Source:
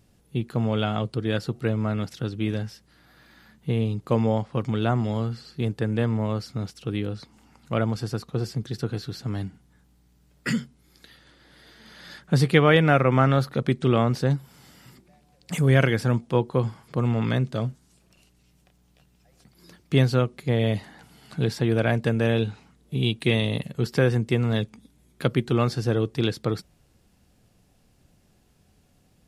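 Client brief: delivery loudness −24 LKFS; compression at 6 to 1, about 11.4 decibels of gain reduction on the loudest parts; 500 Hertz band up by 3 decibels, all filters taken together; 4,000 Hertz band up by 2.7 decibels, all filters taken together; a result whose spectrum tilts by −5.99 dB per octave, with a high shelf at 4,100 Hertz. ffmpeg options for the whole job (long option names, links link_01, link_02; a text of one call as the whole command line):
ffmpeg -i in.wav -af "equalizer=frequency=500:width_type=o:gain=3.5,equalizer=frequency=4000:width_type=o:gain=5.5,highshelf=frequency=4100:gain=-4,acompressor=threshold=-23dB:ratio=6,volume=6dB" out.wav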